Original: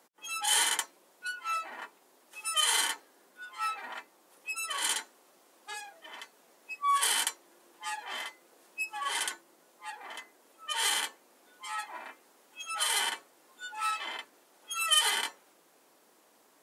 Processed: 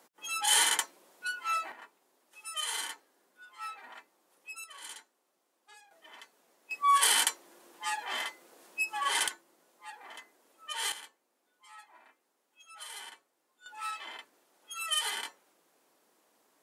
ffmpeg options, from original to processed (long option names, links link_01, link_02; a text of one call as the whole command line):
ffmpeg -i in.wav -af "asetnsamples=nb_out_samples=441:pad=0,asendcmd='1.72 volume volume -8dB;4.64 volume volume -15dB;5.91 volume volume -6dB;6.71 volume volume 3dB;9.28 volume volume -4.5dB;10.92 volume volume -15.5dB;13.66 volume volume -6dB',volume=1.5dB" out.wav